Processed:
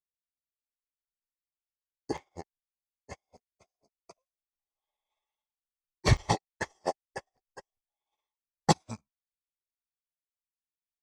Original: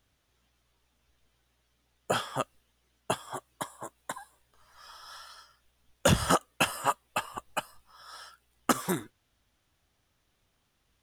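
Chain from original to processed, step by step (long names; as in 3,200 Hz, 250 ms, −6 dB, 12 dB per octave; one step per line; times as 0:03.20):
pitch shift by two crossfaded delay taps −7.5 semitones
low-shelf EQ 67 Hz +5.5 dB
regular buffer underruns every 0.40 s, samples 256, zero, from 0:00.57
expander for the loud parts 2.5 to 1, over −49 dBFS
level +3.5 dB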